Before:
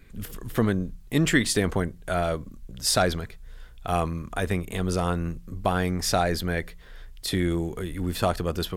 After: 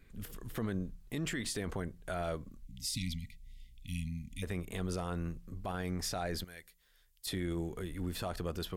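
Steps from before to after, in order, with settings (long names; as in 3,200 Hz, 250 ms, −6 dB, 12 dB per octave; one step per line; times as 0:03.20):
0:02.64–0:04.43: time-frequency box erased 300–1,900 Hz
0:06.44–0:07.27: first-order pre-emphasis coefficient 0.9
brickwall limiter −19 dBFS, peak gain reduction 11.5 dB
level −8.5 dB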